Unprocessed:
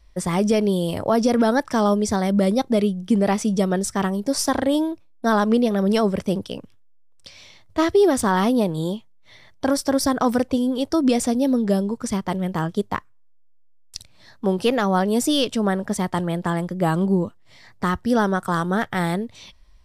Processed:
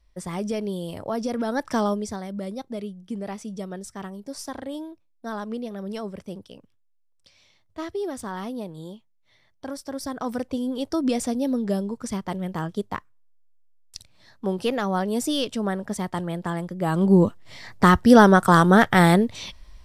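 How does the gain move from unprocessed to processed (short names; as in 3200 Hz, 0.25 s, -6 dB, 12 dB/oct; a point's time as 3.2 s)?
1.47 s -9 dB
1.72 s -2 dB
2.27 s -13.5 dB
9.85 s -13.5 dB
10.75 s -5 dB
16.84 s -5 dB
17.25 s +7 dB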